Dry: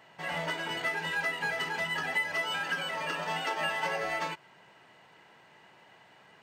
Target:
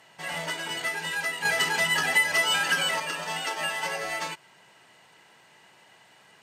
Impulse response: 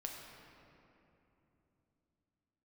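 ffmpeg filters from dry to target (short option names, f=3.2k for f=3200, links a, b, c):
-filter_complex "[0:a]lowpass=f=12k:w=0.5412,lowpass=f=12k:w=1.3066,aemphasis=mode=production:type=75fm,asettb=1/sr,asplit=3[a][b][c];[a]atrim=end=1.454[d];[b]atrim=start=1.45:end=3,asetpts=PTS-STARTPTS,afade=t=in:d=0.004:c=qsin,afade=t=out:st=1.546:d=0.004:c=qsin,acontrast=54[e];[c]atrim=start=2.996[f];[d][e]acrossfade=d=0.004:c1=hsin:c2=qsin[g];[g][f]acrossfade=d=0.004:c1=qsin:c2=hsin"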